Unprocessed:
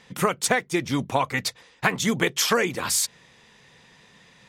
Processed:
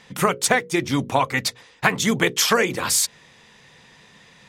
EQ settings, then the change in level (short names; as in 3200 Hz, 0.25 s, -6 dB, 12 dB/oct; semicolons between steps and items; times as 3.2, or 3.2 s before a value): notches 60/120/180/240/300/360/420/480/540 Hz; +3.5 dB